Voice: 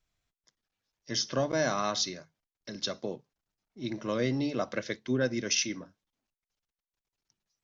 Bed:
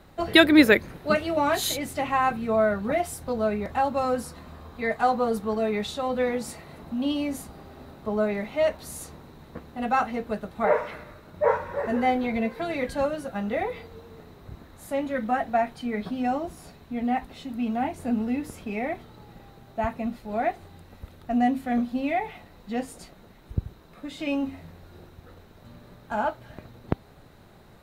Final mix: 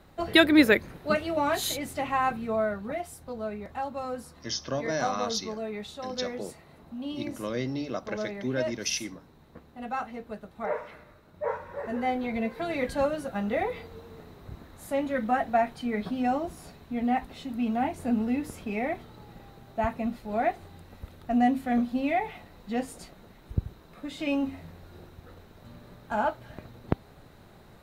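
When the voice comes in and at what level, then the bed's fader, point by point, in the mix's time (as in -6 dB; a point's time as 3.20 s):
3.35 s, -2.0 dB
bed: 2.31 s -3 dB
3.05 s -9 dB
11.47 s -9 dB
12.86 s -0.5 dB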